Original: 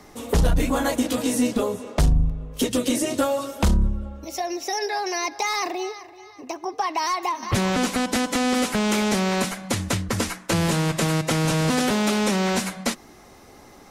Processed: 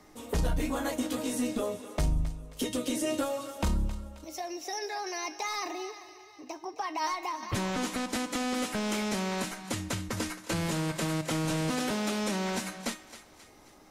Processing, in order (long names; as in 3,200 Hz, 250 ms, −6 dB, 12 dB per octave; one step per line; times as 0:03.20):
tuned comb filter 310 Hz, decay 0.34 s, harmonics all, mix 70%
on a send: feedback echo with a high-pass in the loop 267 ms, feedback 49%, high-pass 720 Hz, level −13 dB